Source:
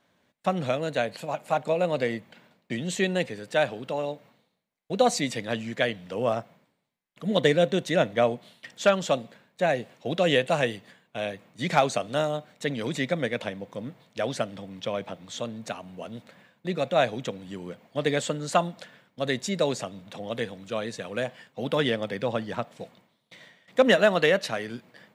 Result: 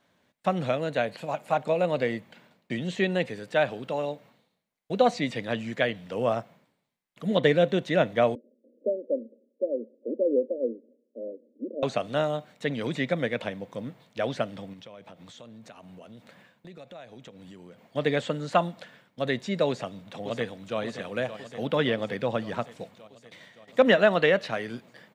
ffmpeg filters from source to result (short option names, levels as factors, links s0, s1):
-filter_complex "[0:a]asettb=1/sr,asplit=3[s0][s1][s2];[s0]atrim=end=8.354[s3];[s1]atrim=start=8.35:end=11.83,asetpts=PTS-STARTPTS,afade=t=in:d=0.004:c=qsin,afade=t=out:st=3.476:d=0.004:c=qsin,asuperpass=centerf=360:order=20:qfactor=1[s4];[s2]atrim=start=11.826[s5];[s3][s4]acrossfade=d=0.004:c1=hsin:c2=qsin[s6];[s6][s5]acrossfade=d=0.004:c1=qsin:c2=hsin,asettb=1/sr,asplit=3[s7][s8][s9];[s7]atrim=end=14.734[s10];[s8]atrim=start=14.73:end=17.85,asetpts=PTS-STARTPTS,afade=t=in:d=0.004:c=qsin,afade=t=out:st=3.116:d=0.004:c=qsin,acompressor=threshold=0.00631:ratio=5:attack=3.2:release=140:knee=1:detection=peak[s11];[s9]atrim=start=17.846[s12];[s10][s11]acrossfade=d=0.004:c1=hsin:c2=qsin[s13];[s13][s12]acrossfade=d=0.004:c1=qsin:c2=hsin,asplit=2[s14][s15];[s15]afade=t=in:st=19.68:d=0.01,afade=t=out:st=20.79:d=0.01,aecho=0:1:570|1140|1710|2280|2850|3420|3990|4560|5130|5700:0.298538|0.208977|0.146284|0.102399|0.071679|0.0501753|0.0351227|0.0245859|0.0172101|0.0120471[s16];[s14][s16]amix=inputs=2:normalize=0,acrossover=split=4000[s17][s18];[s18]acompressor=threshold=0.00224:ratio=4:attack=1:release=60[s19];[s17][s19]amix=inputs=2:normalize=0"